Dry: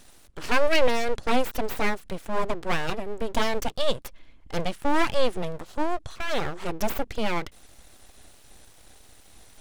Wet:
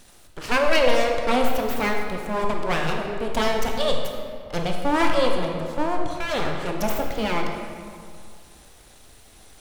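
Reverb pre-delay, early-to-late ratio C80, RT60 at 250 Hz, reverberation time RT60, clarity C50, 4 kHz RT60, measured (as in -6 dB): 20 ms, 4.5 dB, 2.2 s, 2.2 s, 3.0 dB, 1.4 s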